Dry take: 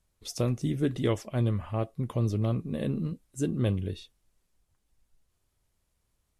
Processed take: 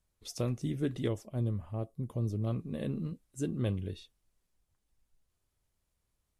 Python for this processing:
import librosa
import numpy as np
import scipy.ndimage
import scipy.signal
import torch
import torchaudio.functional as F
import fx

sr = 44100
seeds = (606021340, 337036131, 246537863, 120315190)

y = fx.peak_eq(x, sr, hz=2100.0, db=-11.5, octaves=2.5, at=(1.08, 2.47))
y = F.gain(torch.from_numpy(y), -5.0).numpy()